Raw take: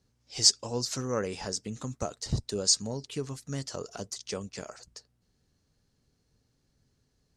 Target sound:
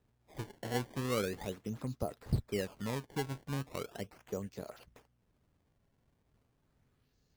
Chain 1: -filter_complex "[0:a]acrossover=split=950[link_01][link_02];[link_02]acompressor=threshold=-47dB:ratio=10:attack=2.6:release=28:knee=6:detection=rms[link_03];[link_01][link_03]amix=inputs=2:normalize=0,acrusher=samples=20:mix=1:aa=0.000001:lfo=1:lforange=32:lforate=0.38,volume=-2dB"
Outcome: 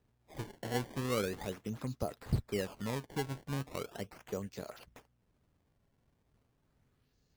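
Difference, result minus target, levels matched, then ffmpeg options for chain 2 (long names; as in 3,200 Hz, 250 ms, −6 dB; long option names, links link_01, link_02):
downward compressor: peak gain reduction −5.5 dB
-filter_complex "[0:a]acrossover=split=950[link_01][link_02];[link_02]acompressor=threshold=-53dB:ratio=10:attack=2.6:release=28:knee=6:detection=rms[link_03];[link_01][link_03]amix=inputs=2:normalize=0,acrusher=samples=20:mix=1:aa=0.000001:lfo=1:lforange=32:lforate=0.38,volume=-2dB"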